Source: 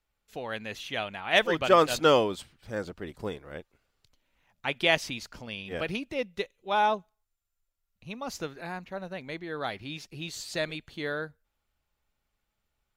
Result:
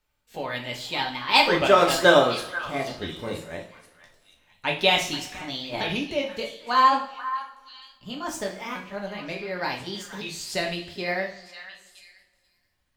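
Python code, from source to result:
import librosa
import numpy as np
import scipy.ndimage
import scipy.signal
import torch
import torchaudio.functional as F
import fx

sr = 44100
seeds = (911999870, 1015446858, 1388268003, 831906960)

y = fx.pitch_ramps(x, sr, semitones=5.5, every_ms=1459)
y = fx.echo_stepped(y, sr, ms=485, hz=1400.0, octaves=1.4, feedback_pct=70, wet_db=-10)
y = fx.rev_double_slope(y, sr, seeds[0], early_s=0.42, late_s=2.0, knee_db=-20, drr_db=0.5)
y = F.gain(torch.from_numpy(y), 3.5).numpy()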